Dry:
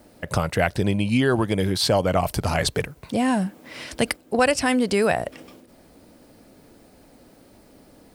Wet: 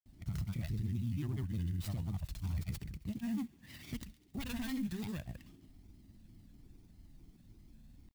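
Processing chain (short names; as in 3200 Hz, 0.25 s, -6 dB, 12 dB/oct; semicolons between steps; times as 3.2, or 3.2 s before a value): self-modulated delay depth 0.27 ms; passive tone stack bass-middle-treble 10-0-1; comb 1 ms, depth 80%; in parallel at +1 dB: compressor, threshold -49 dBFS, peak gain reduction 20.5 dB; on the sum: limiter -29 dBFS, peak gain reduction 9.5 dB; grains, pitch spread up and down by 3 st; vibrato 2.4 Hz 52 cents; on a send: thin delay 68 ms, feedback 72%, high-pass 2100 Hz, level -19 dB; on the sum: clock jitter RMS 0.026 ms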